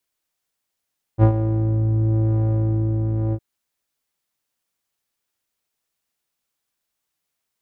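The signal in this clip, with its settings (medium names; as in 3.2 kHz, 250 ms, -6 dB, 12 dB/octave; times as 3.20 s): synth patch with filter wobble A2, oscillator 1 square, oscillator 2 level -8 dB, filter lowpass, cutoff 340 Hz, Q 0.95, filter envelope 1 oct, filter decay 0.31 s, filter sustain 20%, attack 50 ms, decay 0.09 s, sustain -11 dB, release 0.06 s, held 2.15 s, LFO 1 Hz, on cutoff 0.3 oct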